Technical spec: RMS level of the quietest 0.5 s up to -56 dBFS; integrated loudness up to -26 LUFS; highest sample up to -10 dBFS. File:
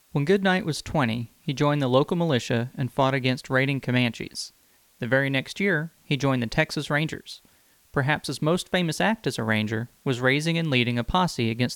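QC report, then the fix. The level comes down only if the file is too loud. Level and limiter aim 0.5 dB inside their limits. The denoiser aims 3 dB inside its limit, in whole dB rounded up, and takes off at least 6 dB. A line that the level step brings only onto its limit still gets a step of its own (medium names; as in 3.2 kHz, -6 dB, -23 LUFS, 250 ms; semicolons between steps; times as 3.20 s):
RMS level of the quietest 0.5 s -60 dBFS: pass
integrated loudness -24.5 LUFS: fail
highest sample -6.5 dBFS: fail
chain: trim -2 dB; peak limiter -10.5 dBFS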